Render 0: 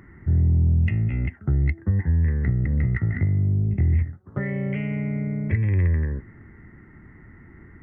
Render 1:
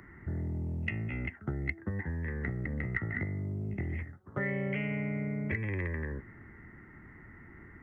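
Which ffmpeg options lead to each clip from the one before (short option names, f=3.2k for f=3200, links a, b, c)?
-filter_complex "[0:a]lowshelf=f=410:g=-7,acrossover=split=210|990[a][b][c];[a]acompressor=threshold=-36dB:ratio=6[d];[d][b][c]amix=inputs=3:normalize=0"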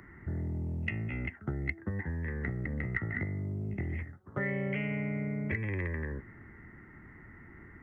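-af anull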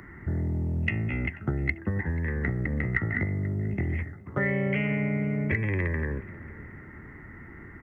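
-filter_complex "[0:a]asplit=2[a][b];[b]adelay=486,lowpass=f=2.5k:p=1,volume=-18.5dB,asplit=2[c][d];[d]adelay=486,lowpass=f=2.5k:p=1,volume=0.48,asplit=2[e][f];[f]adelay=486,lowpass=f=2.5k:p=1,volume=0.48,asplit=2[g][h];[h]adelay=486,lowpass=f=2.5k:p=1,volume=0.48[i];[a][c][e][g][i]amix=inputs=5:normalize=0,volume=6.5dB"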